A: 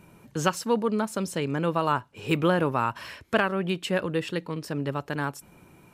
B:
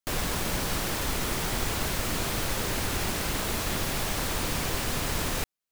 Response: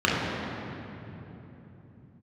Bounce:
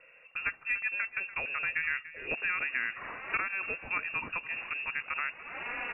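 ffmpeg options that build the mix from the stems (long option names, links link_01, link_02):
-filter_complex "[0:a]highshelf=frequency=6000:gain=10,acrossover=split=190|650[link_01][link_02][link_03];[link_01]acompressor=threshold=-38dB:ratio=4[link_04];[link_02]acompressor=threshold=-33dB:ratio=4[link_05];[link_03]acompressor=threshold=-30dB:ratio=4[link_06];[link_04][link_05][link_06]amix=inputs=3:normalize=0,volume=-1dB,asplit=3[link_07][link_08][link_09];[link_08]volume=-15dB[link_10];[1:a]asoftclip=type=tanh:threshold=-27dB,aphaser=in_gain=1:out_gain=1:delay=4.2:decay=0.63:speed=0.43:type=sinusoidal,adelay=2300,volume=1.5dB[link_11];[link_09]apad=whole_len=353279[link_12];[link_11][link_12]sidechaincompress=threshold=-51dB:ratio=6:attack=5.1:release=235[link_13];[link_10]aecho=0:1:290:1[link_14];[link_07][link_13][link_14]amix=inputs=3:normalize=0,highpass=frequency=300:poles=1,lowpass=frequency=2500:width_type=q:width=0.5098,lowpass=frequency=2500:width_type=q:width=0.6013,lowpass=frequency=2500:width_type=q:width=0.9,lowpass=frequency=2500:width_type=q:width=2.563,afreqshift=-2900"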